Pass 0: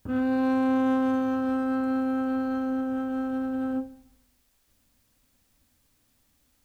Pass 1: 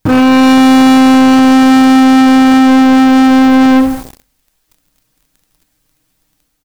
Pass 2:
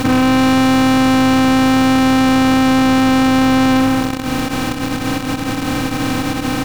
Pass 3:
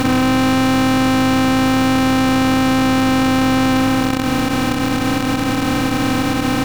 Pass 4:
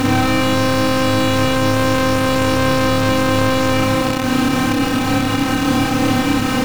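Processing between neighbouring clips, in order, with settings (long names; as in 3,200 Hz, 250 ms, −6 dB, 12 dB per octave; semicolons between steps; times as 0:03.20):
comb filter 6.4 ms, depth 86%; automatic gain control gain up to 5 dB; leveller curve on the samples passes 5; level +8.5 dB
compressor on every frequency bin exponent 0.2; downward compressor 8 to 1, threshold −11 dBFS, peak gain reduction 8 dB; brickwall limiter −6 dBFS, peak gain reduction 9.5 dB
compressor on every frequency bin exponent 0.4; level −3.5 dB
flutter between parallel walls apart 4.9 metres, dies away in 0.41 s; level −1 dB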